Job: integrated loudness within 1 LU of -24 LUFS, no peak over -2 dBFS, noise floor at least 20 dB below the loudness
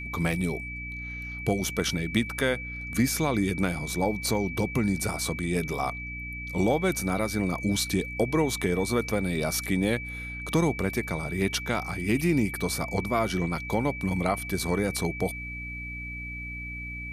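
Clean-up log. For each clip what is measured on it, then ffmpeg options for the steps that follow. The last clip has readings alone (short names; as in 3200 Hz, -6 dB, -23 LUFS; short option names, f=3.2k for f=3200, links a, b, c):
hum 60 Hz; harmonics up to 300 Hz; hum level -38 dBFS; steady tone 2300 Hz; tone level -36 dBFS; loudness -28.0 LUFS; peak -8.5 dBFS; loudness target -24.0 LUFS
-> -af "bandreject=f=60:t=h:w=6,bandreject=f=120:t=h:w=6,bandreject=f=180:t=h:w=6,bandreject=f=240:t=h:w=6,bandreject=f=300:t=h:w=6"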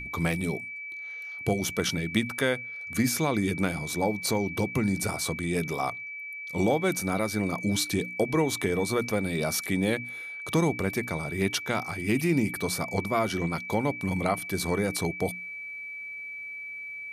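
hum none; steady tone 2300 Hz; tone level -36 dBFS
-> -af "bandreject=f=2.3k:w=30"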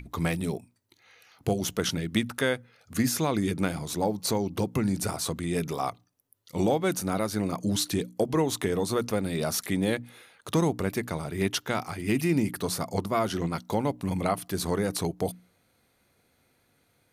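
steady tone none; loudness -29.0 LUFS; peak -9.5 dBFS; loudness target -24.0 LUFS
-> -af "volume=5dB"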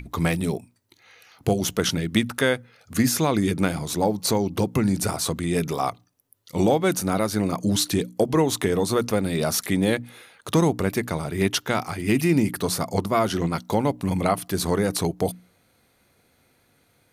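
loudness -24.0 LUFS; peak -4.5 dBFS; noise floor -64 dBFS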